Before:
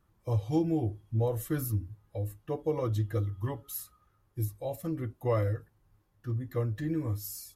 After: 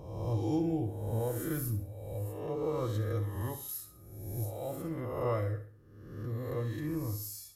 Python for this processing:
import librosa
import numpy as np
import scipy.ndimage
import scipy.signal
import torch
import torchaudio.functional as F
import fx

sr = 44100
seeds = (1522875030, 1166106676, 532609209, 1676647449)

p1 = fx.spec_swells(x, sr, rise_s=1.15)
p2 = p1 + fx.echo_feedback(p1, sr, ms=67, feedback_pct=38, wet_db=-11.0, dry=0)
y = F.gain(torch.from_numpy(p2), -5.5).numpy()